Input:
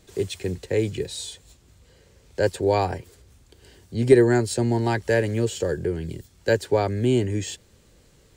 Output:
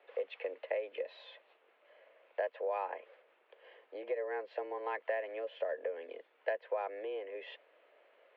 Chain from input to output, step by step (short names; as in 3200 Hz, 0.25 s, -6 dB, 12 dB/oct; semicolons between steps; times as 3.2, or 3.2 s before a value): compressor 12:1, threshold -28 dBFS, peak gain reduction 20 dB; mistuned SSB +96 Hz 370–2700 Hz; gain -2 dB